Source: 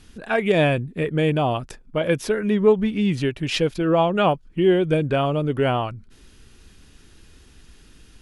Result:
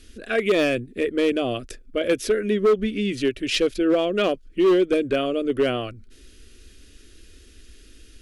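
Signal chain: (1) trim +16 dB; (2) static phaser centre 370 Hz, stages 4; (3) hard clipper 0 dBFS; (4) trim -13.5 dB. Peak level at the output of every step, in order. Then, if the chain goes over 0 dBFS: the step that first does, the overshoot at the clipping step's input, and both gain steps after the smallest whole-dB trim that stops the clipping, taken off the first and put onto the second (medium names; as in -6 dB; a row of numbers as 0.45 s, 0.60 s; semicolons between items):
+10.5 dBFS, +9.0 dBFS, 0.0 dBFS, -13.5 dBFS; step 1, 9.0 dB; step 1 +7 dB, step 4 -4.5 dB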